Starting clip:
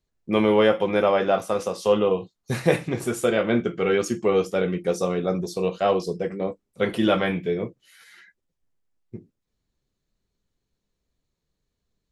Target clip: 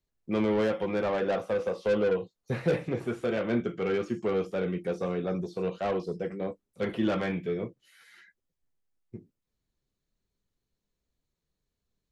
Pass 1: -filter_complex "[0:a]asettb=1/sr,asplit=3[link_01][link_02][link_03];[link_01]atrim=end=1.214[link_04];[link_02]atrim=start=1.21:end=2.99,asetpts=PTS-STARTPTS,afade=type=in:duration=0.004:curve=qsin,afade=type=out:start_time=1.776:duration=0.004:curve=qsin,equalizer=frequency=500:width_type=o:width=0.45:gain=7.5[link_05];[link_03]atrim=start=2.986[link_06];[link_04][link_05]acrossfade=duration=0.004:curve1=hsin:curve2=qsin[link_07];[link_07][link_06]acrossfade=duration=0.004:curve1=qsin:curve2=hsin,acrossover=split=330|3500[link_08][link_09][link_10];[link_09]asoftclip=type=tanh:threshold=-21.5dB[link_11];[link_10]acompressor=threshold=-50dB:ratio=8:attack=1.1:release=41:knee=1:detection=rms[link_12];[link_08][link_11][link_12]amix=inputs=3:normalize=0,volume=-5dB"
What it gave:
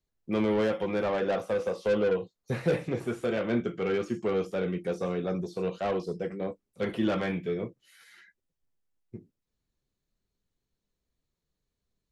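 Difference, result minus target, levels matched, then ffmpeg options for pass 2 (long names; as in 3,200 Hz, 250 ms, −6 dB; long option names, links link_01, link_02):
downward compressor: peak gain reduction −5.5 dB
-filter_complex "[0:a]asettb=1/sr,asplit=3[link_01][link_02][link_03];[link_01]atrim=end=1.214[link_04];[link_02]atrim=start=1.21:end=2.99,asetpts=PTS-STARTPTS,afade=type=in:duration=0.004:curve=qsin,afade=type=out:start_time=1.776:duration=0.004:curve=qsin,equalizer=frequency=500:width_type=o:width=0.45:gain=7.5[link_05];[link_03]atrim=start=2.986[link_06];[link_04][link_05]acrossfade=duration=0.004:curve1=hsin:curve2=qsin[link_07];[link_07][link_06]acrossfade=duration=0.004:curve1=qsin:curve2=hsin,acrossover=split=330|3500[link_08][link_09][link_10];[link_09]asoftclip=type=tanh:threshold=-21.5dB[link_11];[link_10]acompressor=threshold=-56.5dB:ratio=8:attack=1.1:release=41:knee=1:detection=rms[link_12];[link_08][link_11][link_12]amix=inputs=3:normalize=0,volume=-5dB"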